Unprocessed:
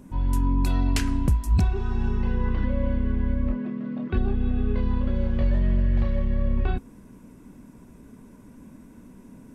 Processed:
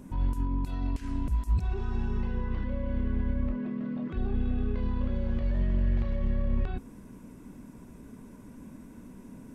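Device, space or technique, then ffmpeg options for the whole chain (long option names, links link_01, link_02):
de-esser from a sidechain: -filter_complex "[0:a]asplit=2[link_01][link_02];[link_02]highpass=frequency=4200:poles=1,apad=whole_len=420802[link_03];[link_01][link_03]sidechaincompress=threshold=-52dB:ratio=12:attack=2.1:release=48"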